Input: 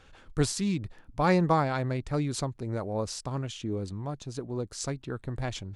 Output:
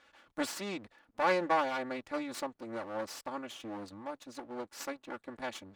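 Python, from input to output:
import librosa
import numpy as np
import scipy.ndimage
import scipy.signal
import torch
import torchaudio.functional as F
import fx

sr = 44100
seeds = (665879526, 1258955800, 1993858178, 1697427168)

y = fx.lower_of_two(x, sr, delay_ms=3.5)
y = fx.highpass(y, sr, hz=1100.0, slope=6)
y = fx.high_shelf(y, sr, hz=3100.0, db=-11.0)
y = y * librosa.db_to_amplitude(2.5)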